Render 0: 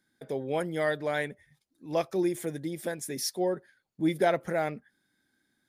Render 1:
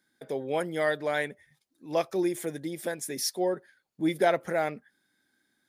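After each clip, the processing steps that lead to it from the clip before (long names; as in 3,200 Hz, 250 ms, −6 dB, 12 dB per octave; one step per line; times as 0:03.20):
low-shelf EQ 170 Hz −9.5 dB
level +2 dB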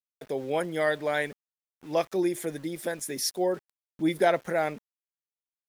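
centre clipping without the shift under −48.5 dBFS
level +1 dB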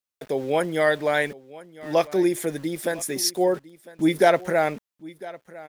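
single-tap delay 1,003 ms −19.5 dB
level +5.5 dB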